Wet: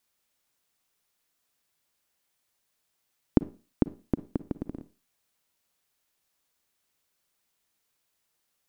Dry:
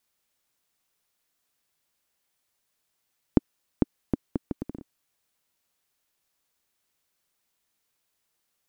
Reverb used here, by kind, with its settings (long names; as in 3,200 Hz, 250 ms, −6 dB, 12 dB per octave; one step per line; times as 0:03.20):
four-comb reverb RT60 0.34 s, DRR 15.5 dB